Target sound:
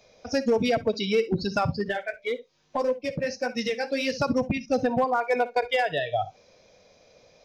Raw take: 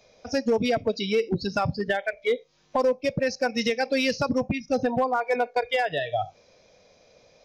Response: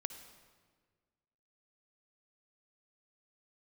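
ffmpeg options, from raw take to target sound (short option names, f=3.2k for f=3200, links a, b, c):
-filter_complex "[1:a]atrim=start_sample=2205,atrim=end_sample=3087[a];[0:a][a]afir=irnorm=-1:irlink=0,asplit=3[b][c][d];[b]afade=t=out:st=1.88:d=0.02[e];[c]flanger=delay=7.1:depth=6.4:regen=-39:speed=1.7:shape=triangular,afade=t=in:st=1.88:d=0.02,afade=t=out:st=4.15:d=0.02[f];[d]afade=t=in:st=4.15:d=0.02[g];[e][f][g]amix=inputs=3:normalize=0,volume=2dB"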